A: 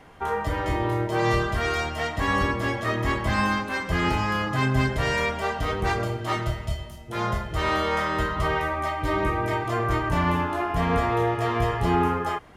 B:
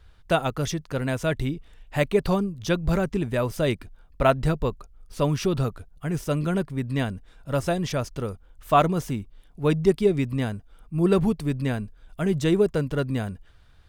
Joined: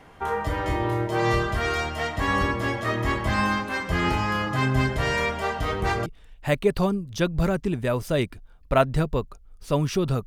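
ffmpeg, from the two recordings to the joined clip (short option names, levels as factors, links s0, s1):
-filter_complex "[0:a]apad=whole_dur=10.26,atrim=end=10.26,atrim=end=6.062[s0];[1:a]atrim=start=1.548:end=5.75[s1];[s0][s1]acrossfade=d=0.004:c1=hsin:c2=hsin"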